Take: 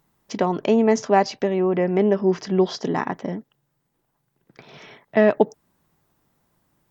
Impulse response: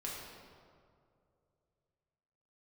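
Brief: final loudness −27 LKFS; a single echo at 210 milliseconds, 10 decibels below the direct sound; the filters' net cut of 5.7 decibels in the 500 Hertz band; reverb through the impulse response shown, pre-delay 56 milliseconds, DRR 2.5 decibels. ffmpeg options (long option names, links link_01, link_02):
-filter_complex "[0:a]equalizer=frequency=500:width_type=o:gain=-8,aecho=1:1:210:0.316,asplit=2[link_01][link_02];[1:a]atrim=start_sample=2205,adelay=56[link_03];[link_02][link_03]afir=irnorm=-1:irlink=0,volume=-3dB[link_04];[link_01][link_04]amix=inputs=2:normalize=0,volume=-4.5dB"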